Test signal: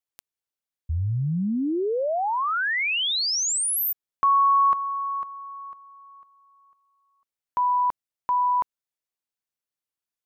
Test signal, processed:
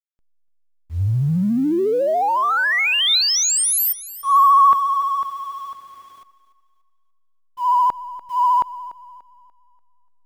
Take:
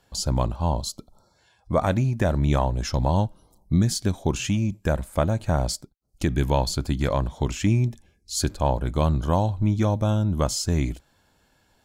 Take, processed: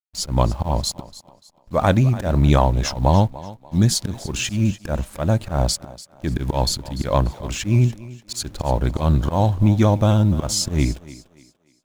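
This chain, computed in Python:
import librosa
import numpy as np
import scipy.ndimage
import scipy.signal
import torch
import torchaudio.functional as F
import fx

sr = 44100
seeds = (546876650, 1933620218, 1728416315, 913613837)

p1 = fx.peak_eq(x, sr, hz=3800.0, db=3.5, octaves=0.22)
p2 = fx.vibrato(p1, sr, rate_hz=14.0, depth_cents=46.0)
p3 = fx.auto_swell(p2, sr, attack_ms=131.0)
p4 = fx.quant_dither(p3, sr, seeds[0], bits=8, dither='triangular')
p5 = p3 + (p4 * 10.0 ** (-10.0 / 20.0))
p6 = fx.backlash(p5, sr, play_db=-40.0)
p7 = fx.echo_thinned(p6, sr, ms=292, feedback_pct=35, hz=180.0, wet_db=-16.5)
y = p7 * 10.0 ** (4.0 / 20.0)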